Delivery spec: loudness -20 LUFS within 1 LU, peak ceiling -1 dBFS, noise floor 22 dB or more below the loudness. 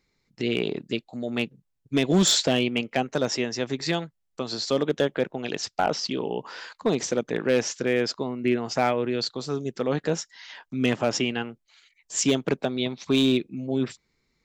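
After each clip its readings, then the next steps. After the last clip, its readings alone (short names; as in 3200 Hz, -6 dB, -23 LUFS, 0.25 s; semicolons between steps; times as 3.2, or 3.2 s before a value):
clipped 0.3%; flat tops at -13.5 dBFS; loudness -26.0 LUFS; peak -13.5 dBFS; loudness target -20.0 LUFS
-> clip repair -13.5 dBFS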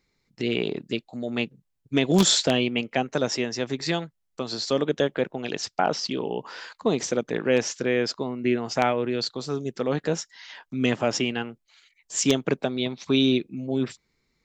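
clipped 0.0%; loudness -26.0 LUFS; peak -4.5 dBFS; loudness target -20.0 LUFS
-> gain +6 dB; limiter -1 dBFS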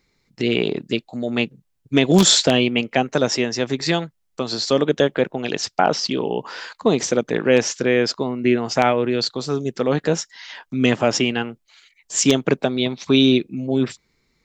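loudness -20.0 LUFS; peak -1.0 dBFS; noise floor -69 dBFS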